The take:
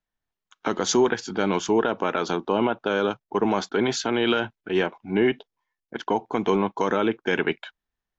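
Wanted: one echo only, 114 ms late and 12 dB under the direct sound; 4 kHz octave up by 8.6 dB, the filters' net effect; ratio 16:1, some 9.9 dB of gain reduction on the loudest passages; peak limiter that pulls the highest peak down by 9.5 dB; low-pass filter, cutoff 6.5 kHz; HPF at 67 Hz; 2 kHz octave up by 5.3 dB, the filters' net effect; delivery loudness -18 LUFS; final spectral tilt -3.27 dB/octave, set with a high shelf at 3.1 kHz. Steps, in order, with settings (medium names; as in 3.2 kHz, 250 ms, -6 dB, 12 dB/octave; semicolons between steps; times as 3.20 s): high-pass 67 Hz; low-pass 6.5 kHz; peaking EQ 2 kHz +3.5 dB; treble shelf 3.1 kHz +7.5 dB; peaking EQ 4 kHz +5 dB; compression 16:1, threshold -24 dBFS; peak limiter -21 dBFS; delay 114 ms -12 dB; trim +14.5 dB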